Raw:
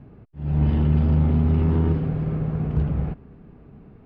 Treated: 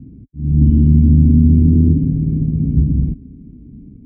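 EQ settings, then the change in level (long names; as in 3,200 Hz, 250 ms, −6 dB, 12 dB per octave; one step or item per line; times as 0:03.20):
formant resonators in series i
high-pass filter 42 Hz
spectral tilt −4.5 dB per octave
+5.5 dB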